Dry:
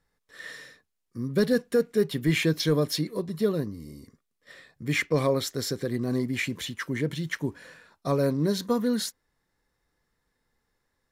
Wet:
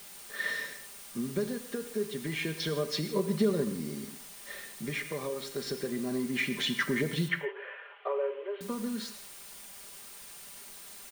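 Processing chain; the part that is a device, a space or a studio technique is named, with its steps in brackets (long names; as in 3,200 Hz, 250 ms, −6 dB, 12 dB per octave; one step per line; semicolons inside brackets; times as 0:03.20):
medium wave at night (band-pass filter 180–4,300 Hz; downward compressor, threshold −34 dBFS, peak gain reduction 15 dB; amplitude tremolo 0.28 Hz, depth 56%; steady tone 9,000 Hz −66 dBFS; white noise bed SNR 14 dB)
0:07.28–0:08.61: Chebyshev band-pass filter 400–3,100 Hz, order 5
comb filter 5 ms, depth 54%
reverb whose tail is shaped and stops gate 190 ms flat, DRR 9 dB
level +7 dB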